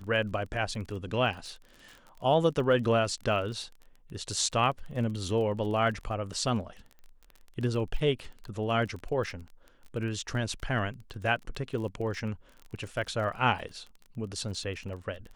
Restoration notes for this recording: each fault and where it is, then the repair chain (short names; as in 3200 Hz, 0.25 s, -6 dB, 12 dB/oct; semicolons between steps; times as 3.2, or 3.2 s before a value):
crackle 26/s -38 dBFS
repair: de-click